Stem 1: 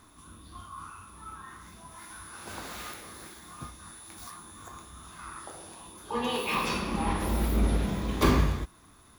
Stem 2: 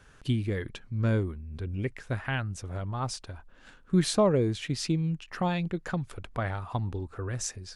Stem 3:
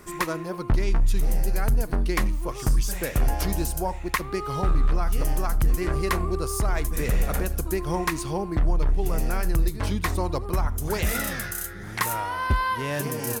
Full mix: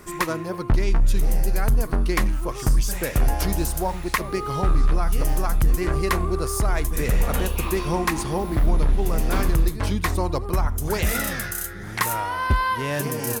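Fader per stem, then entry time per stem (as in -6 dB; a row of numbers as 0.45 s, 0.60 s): -4.5 dB, -16.0 dB, +2.5 dB; 1.10 s, 0.00 s, 0.00 s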